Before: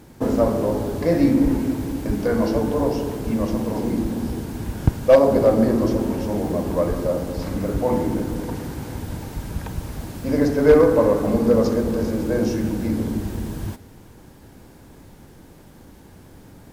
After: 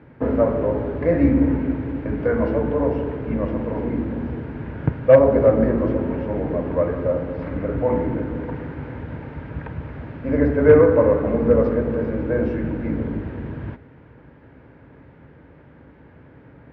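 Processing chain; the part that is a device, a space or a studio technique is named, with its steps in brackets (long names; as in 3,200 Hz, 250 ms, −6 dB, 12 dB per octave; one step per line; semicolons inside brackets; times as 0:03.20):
sub-octave bass pedal (sub-octave generator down 2 octaves, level −3 dB; loudspeaker in its box 73–2,200 Hz, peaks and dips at 96 Hz −7 dB, 200 Hz −10 dB, 350 Hz −6 dB, 760 Hz −7 dB, 1,100 Hz −4 dB)
level +3 dB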